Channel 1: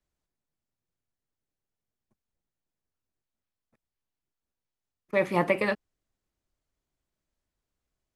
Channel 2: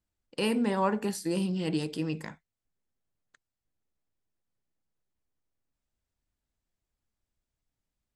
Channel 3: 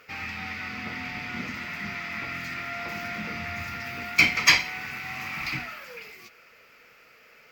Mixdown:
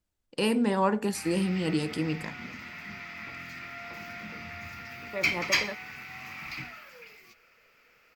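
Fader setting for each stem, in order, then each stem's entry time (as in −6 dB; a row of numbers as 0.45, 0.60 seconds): −10.0, +2.0, −7.5 decibels; 0.00, 0.00, 1.05 seconds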